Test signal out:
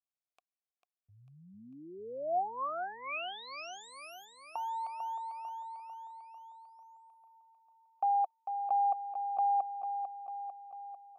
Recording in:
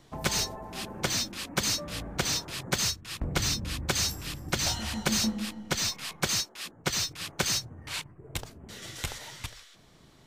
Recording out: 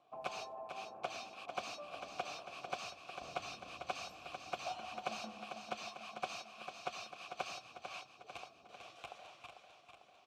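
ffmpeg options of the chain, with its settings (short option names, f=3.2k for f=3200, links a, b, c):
-filter_complex "[0:a]asplit=3[a][b][c];[a]bandpass=f=730:t=q:w=8,volume=0dB[d];[b]bandpass=f=1.09k:t=q:w=8,volume=-6dB[e];[c]bandpass=f=2.44k:t=q:w=8,volume=-9dB[f];[d][e][f]amix=inputs=3:normalize=0,aecho=1:1:447|894|1341|1788|2235|2682|3129:0.422|0.245|0.142|0.0823|0.0477|0.0277|0.0161,volume=1dB"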